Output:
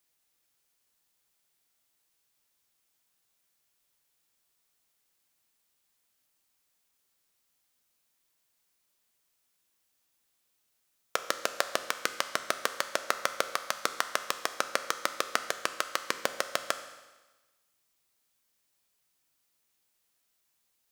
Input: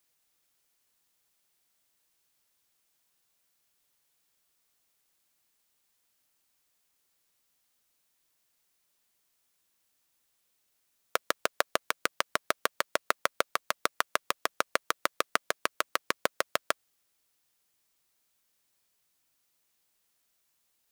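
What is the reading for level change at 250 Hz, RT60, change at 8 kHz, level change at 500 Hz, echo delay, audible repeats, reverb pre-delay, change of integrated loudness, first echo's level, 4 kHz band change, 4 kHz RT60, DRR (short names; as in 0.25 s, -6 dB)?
-1.0 dB, 1.2 s, +2.0 dB, -1.0 dB, none, none, 9 ms, -0.5 dB, none, +1.0 dB, 1.2 s, 9.0 dB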